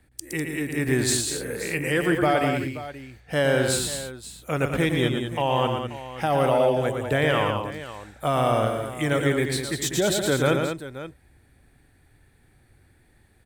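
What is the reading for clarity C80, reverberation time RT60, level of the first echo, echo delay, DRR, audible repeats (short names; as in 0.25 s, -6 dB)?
none, none, -5.5 dB, 0.115 s, none, 3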